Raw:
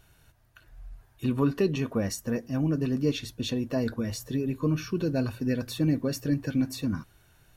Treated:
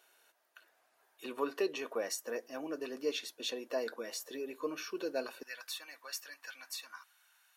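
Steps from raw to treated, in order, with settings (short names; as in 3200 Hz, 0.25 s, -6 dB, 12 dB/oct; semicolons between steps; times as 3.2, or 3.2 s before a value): HPF 410 Hz 24 dB/oct, from 5.43 s 940 Hz; gain -3 dB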